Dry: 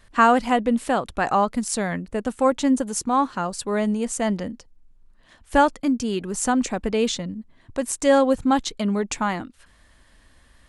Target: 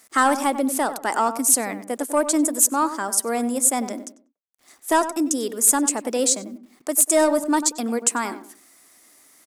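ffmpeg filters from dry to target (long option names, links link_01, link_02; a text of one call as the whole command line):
ffmpeg -i in.wav -filter_complex "[0:a]highpass=frequency=210:width=0.5412,highpass=frequency=210:width=1.3066,highshelf=frequency=4500:width_type=q:width=1.5:gain=12,acontrast=50,asetrate=49833,aresample=44100,acrusher=bits=8:mix=0:aa=0.000001,asplit=2[link_01][link_02];[link_02]adelay=96,lowpass=frequency=1300:poles=1,volume=-10dB,asplit=2[link_03][link_04];[link_04]adelay=96,lowpass=frequency=1300:poles=1,volume=0.3,asplit=2[link_05][link_06];[link_06]adelay=96,lowpass=frequency=1300:poles=1,volume=0.3[link_07];[link_03][link_05][link_07]amix=inputs=3:normalize=0[link_08];[link_01][link_08]amix=inputs=2:normalize=0,volume=-6dB" out.wav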